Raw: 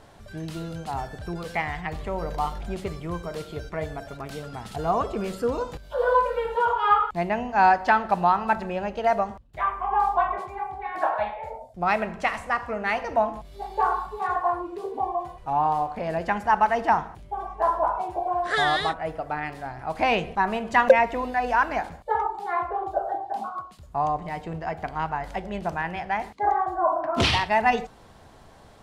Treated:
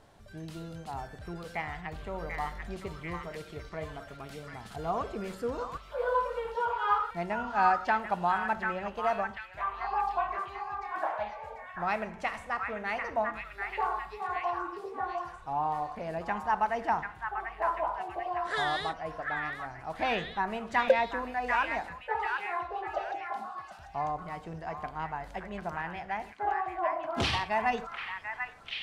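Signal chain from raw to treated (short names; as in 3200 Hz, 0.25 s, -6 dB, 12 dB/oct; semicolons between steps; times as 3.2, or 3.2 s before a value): delay with a stepping band-pass 0.741 s, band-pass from 1600 Hz, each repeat 0.7 oct, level -1 dB; gain -8 dB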